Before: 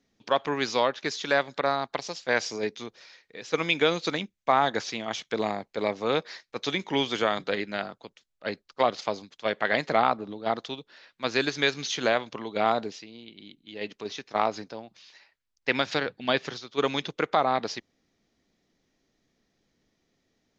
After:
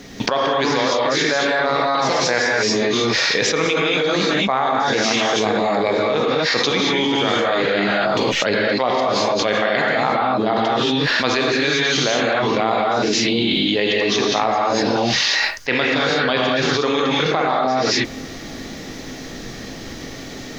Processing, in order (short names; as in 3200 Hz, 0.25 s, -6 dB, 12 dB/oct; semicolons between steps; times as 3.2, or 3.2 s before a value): non-linear reverb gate 0.26 s rising, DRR -6 dB; fast leveller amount 100%; gain -6 dB